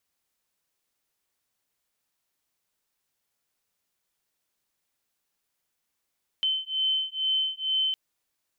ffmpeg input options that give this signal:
ffmpeg -f lavfi -i "aevalsrc='0.0422*(sin(2*PI*3070*t)+sin(2*PI*3072.2*t))':duration=1.51:sample_rate=44100" out.wav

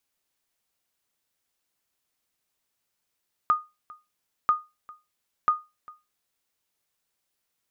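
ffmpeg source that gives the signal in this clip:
ffmpeg -f lavfi -i "aevalsrc='0.224*(sin(2*PI*1230*mod(t,0.99))*exp(-6.91*mod(t,0.99)/0.24)+0.0668*sin(2*PI*1230*max(mod(t,0.99)-0.4,0))*exp(-6.91*max(mod(t,0.99)-0.4,0)/0.24))':duration=2.97:sample_rate=44100" out.wav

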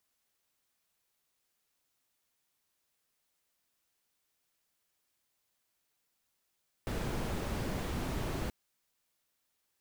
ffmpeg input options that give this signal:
ffmpeg -f lavfi -i "anoisesrc=color=brown:amplitude=0.0832:duration=1.63:sample_rate=44100:seed=1" out.wav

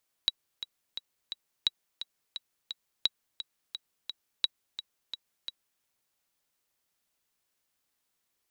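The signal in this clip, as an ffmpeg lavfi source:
ffmpeg -f lavfi -i "aevalsrc='pow(10,(-11-12*gte(mod(t,4*60/173),60/173))/20)*sin(2*PI*3880*mod(t,60/173))*exp(-6.91*mod(t,60/173)/0.03)':duration=5.54:sample_rate=44100" out.wav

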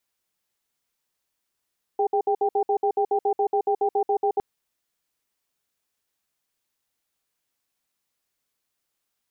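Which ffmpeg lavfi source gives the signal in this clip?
ffmpeg -f lavfi -i "aevalsrc='0.0841*(sin(2*PI*411*t)+sin(2*PI*789*t))*clip(min(mod(t,0.14),0.08-mod(t,0.14))/0.005,0,1)':duration=2.41:sample_rate=44100" out.wav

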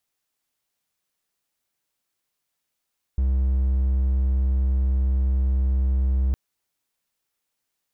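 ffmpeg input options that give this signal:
ffmpeg -f lavfi -i "aevalsrc='0.158*(1-4*abs(mod(65.4*t+0.25,1)-0.5))':duration=3.16:sample_rate=44100" out.wav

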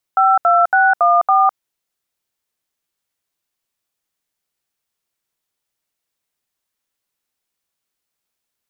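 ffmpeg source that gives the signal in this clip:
ffmpeg -f lavfi -i "aevalsrc='0.251*clip(min(mod(t,0.279),0.207-mod(t,0.279))/0.002,0,1)*(eq(floor(t/0.279),0)*(sin(2*PI*770*mod(t,0.279))+sin(2*PI*1336*mod(t,0.279)))+eq(floor(t/0.279),1)*(sin(2*PI*697*mod(t,0.279))+sin(2*PI*1336*mod(t,0.279)))+eq(floor(t/0.279),2)*(sin(2*PI*770*mod(t,0.279))+sin(2*PI*1477*mod(t,0.279)))+eq(floor(t/0.279),3)*(sin(2*PI*697*mod(t,0.279))+sin(2*PI*1209*mod(t,0.279)))+eq(floor(t/0.279),4)*(sin(2*PI*770*mod(t,0.279))+sin(2*PI*1209*mod(t,0.279))))':duration=1.395:sample_rate=44100" out.wav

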